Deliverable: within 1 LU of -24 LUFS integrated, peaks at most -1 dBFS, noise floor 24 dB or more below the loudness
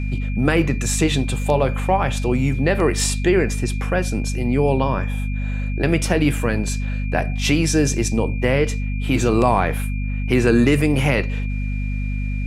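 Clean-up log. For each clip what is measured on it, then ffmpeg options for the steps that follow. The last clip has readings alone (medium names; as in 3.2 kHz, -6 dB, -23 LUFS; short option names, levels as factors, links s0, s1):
hum 50 Hz; highest harmonic 250 Hz; hum level -21 dBFS; steady tone 2.4 kHz; tone level -36 dBFS; loudness -20.0 LUFS; peak level -2.5 dBFS; loudness target -24.0 LUFS
-> -af "bandreject=f=50:t=h:w=6,bandreject=f=100:t=h:w=6,bandreject=f=150:t=h:w=6,bandreject=f=200:t=h:w=6,bandreject=f=250:t=h:w=6"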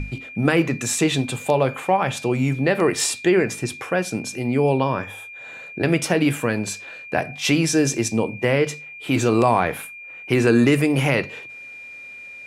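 hum not found; steady tone 2.4 kHz; tone level -36 dBFS
-> -af "bandreject=f=2400:w=30"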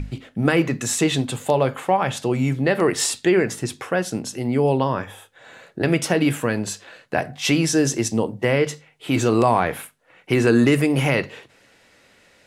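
steady tone not found; loudness -21.0 LUFS; peak level -4.5 dBFS; loudness target -24.0 LUFS
-> -af "volume=0.708"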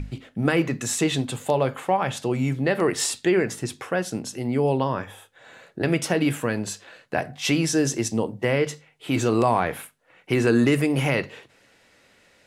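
loudness -24.0 LUFS; peak level -7.5 dBFS; noise floor -59 dBFS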